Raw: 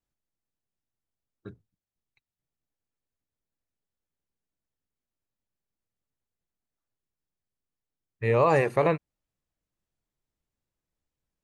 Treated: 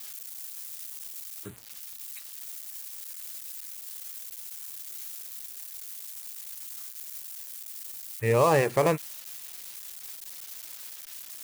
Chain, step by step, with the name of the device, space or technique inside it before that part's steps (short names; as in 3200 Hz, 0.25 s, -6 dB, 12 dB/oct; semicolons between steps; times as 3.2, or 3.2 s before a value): budget class-D amplifier (switching dead time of 0.095 ms; switching spikes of -27.5 dBFS)